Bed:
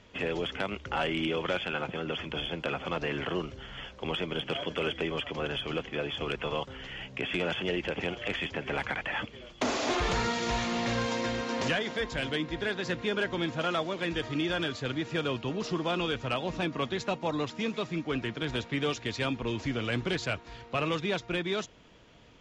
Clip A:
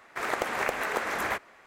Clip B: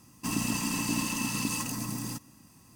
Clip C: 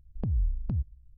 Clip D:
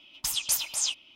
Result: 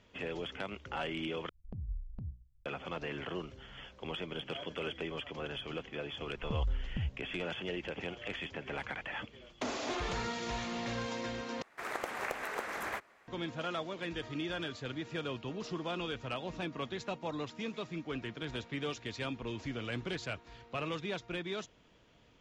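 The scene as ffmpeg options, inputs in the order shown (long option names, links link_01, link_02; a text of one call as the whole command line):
ffmpeg -i bed.wav -i cue0.wav -i cue1.wav -i cue2.wav -filter_complex "[3:a]asplit=2[link_01][link_02];[0:a]volume=-7.5dB[link_03];[link_01]bandreject=frequency=60:width_type=h:width=6,bandreject=frequency=120:width_type=h:width=6,bandreject=frequency=180:width_type=h:width=6,bandreject=frequency=240:width_type=h:width=6,bandreject=frequency=300:width_type=h:width=6,bandreject=frequency=360:width_type=h:width=6[link_04];[link_03]asplit=3[link_05][link_06][link_07];[link_05]atrim=end=1.494[link_08];[link_04]atrim=end=1.17,asetpts=PTS-STARTPTS,volume=-12dB[link_09];[link_06]atrim=start=2.656:end=11.624[link_10];[1:a]atrim=end=1.66,asetpts=PTS-STARTPTS,volume=-8.5dB[link_11];[link_07]atrim=start=13.276[link_12];[link_02]atrim=end=1.17,asetpts=PTS-STARTPTS,volume=-6dB,afade=type=in:duration=0.004:curve=hsin,afade=type=out:start_time=1.166:duration=0.004:curve=hsin,adelay=6270[link_13];[link_08][link_09]acrossfade=duration=0.004:curve1=hsin:curve2=hsin[link_14];[link_14][link_10]acrossfade=duration=0.004:curve1=hsin:curve2=hsin[link_15];[link_15][link_11]acrossfade=duration=0.004:curve1=hsin:curve2=hsin[link_16];[link_16][link_12]acrossfade=duration=0.004:curve1=hsin:curve2=hsin[link_17];[link_17][link_13]amix=inputs=2:normalize=0" out.wav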